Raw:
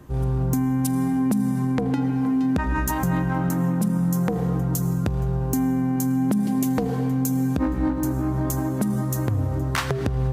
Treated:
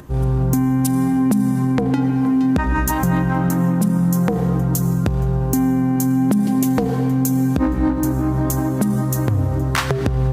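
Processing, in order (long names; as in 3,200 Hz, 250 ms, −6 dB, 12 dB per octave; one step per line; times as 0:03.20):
upward compression, threshold −44 dBFS
level +5 dB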